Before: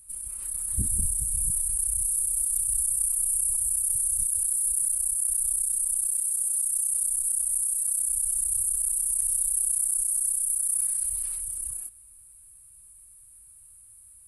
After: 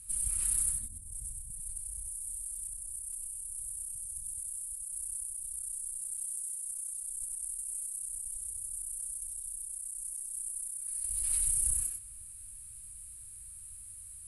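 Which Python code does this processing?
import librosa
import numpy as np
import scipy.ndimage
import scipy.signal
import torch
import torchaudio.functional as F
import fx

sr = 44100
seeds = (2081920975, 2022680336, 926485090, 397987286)

p1 = scipy.signal.sosfilt(scipy.signal.butter(2, 8600.0, 'lowpass', fs=sr, output='sos'), x)
p2 = fx.peak_eq(p1, sr, hz=670.0, db=-15.0, octaves=1.5)
p3 = fx.over_compress(p2, sr, threshold_db=-37.0, ratio=-0.5)
y = p3 + fx.echo_single(p3, sr, ms=94, db=-4.0, dry=0)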